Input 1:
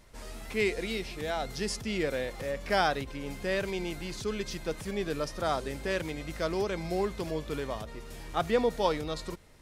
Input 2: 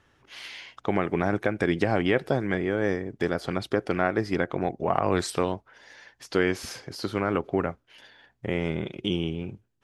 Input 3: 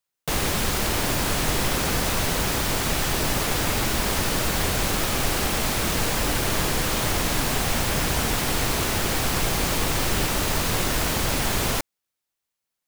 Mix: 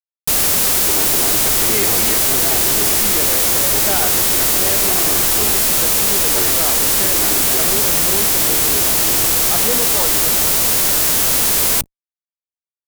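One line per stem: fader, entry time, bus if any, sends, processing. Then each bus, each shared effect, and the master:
−8.0 dB, 1.15 s, no send, no processing
−14.5 dB, 0.00 s, no send, lower of the sound and its delayed copy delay 2.7 ms
−1.5 dB, 0.00 s, no send, spectral envelope flattened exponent 0.1; parametric band 2,200 Hz −8.5 dB 2.9 octaves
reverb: not used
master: mains-hum notches 50/100/150 Hz; fuzz pedal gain 48 dB, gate −56 dBFS

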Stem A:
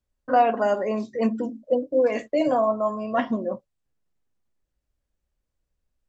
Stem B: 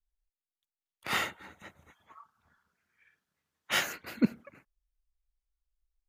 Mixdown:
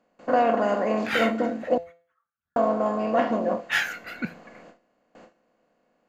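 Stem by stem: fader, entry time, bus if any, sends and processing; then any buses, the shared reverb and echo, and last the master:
+1.5 dB, 0.00 s, muted 0:01.78–0:02.56, no send, compressor on every frequency bin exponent 0.4
+2.5 dB, 0.00 s, no send, drawn EQ curve 1,000 Hz 0 dB, 1,500 Hz +12 dB, 9,300 Hz −3 dB; phase shifter 0.37 Hz, delay 1.5 ms, feedback 50%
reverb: not used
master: noise gate with hold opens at −30 dBFS; tuned comb filter 170 Hz, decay 0.41 s, harmonics all, mix 60%

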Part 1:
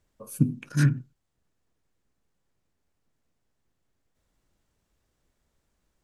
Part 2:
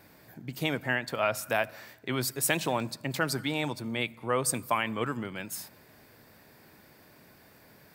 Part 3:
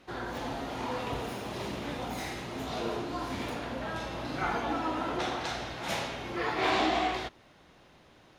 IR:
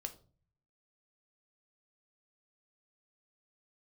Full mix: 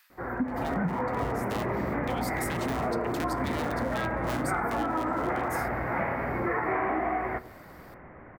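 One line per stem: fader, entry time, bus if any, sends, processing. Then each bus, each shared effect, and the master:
−0.5 dB, 0.00 s, no send, three sine waves on the formant tracks
−3.5 dB, 0.00 s, send −6 dB, sub-harmonics by changed cycles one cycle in 2, inverted; high-pass filter 1,200 Hz 24 dB per octave; downward compressor, threshold −32 dBFS, peak gain reduction 8.5 dB; automatic ducking −17 dB, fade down 0.25 s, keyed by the first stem
−0.5 dB, 0.10 s, send −4 dB, Chebyshev low-pass filter 2,100 Hz, order 5; automatic gain control gain up to 9 dB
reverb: on, RT60 0.40 s, pre-delay 3 ms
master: downward compressor 6 to 1, threshold −26 dBFS, peak gain reduction 12.5 dB

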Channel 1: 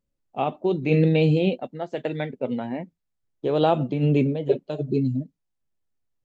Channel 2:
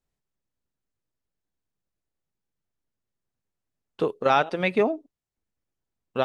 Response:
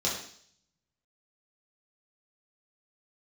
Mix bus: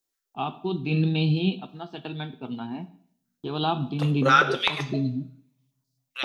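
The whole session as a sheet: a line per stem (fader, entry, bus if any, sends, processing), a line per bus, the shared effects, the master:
−1.5 dB, 0.00 s, send −19 dB, noise gate with hold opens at −45 dBFS; high-shelf EQ 2,700 Hz +7.5 dB; phaser with its sweep stopped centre 2,000 Hz, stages 6
−5.5 dB, 0.00 s, send −14 dB, spectral tilt +4 dB per octave; high-pass on a step sequencer 7.7 Hz 290–4,700 Hz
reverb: on, RT60 0.60 s, pre-delay 3 ms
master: no processing

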